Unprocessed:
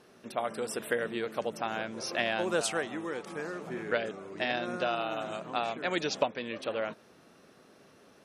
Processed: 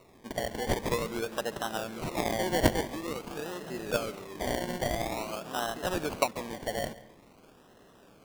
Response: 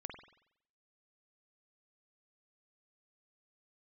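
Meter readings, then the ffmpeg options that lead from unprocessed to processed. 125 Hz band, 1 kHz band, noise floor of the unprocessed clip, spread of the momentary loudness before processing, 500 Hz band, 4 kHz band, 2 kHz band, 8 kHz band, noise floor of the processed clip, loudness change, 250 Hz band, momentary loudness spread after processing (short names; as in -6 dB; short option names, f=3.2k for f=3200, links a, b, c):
+8.5 dB, +0.5 dB, -59 dBFS, 8 LU, 0.0 dB, 0.0 dB, -2.5 dB, +2.0 dB, -58 dBFS, +0.5 dB, +3.0 dB, 9 LU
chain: -filter_complex "[0:a]highshelf=f=7.2k:t=q:w=3:g=10,acrusher=samples=27:mix=1:aa=0.000001:lfo=1:lforange=16.2:lforate=0.48,asplit=2[a][b];[1:a]atrim=start_sample=2205,adelay=137[c];[b][c]afir=irnorm=-1:irlink=0,volume=-14dB[d];[a][d]amix=inputs=2:normalize=0"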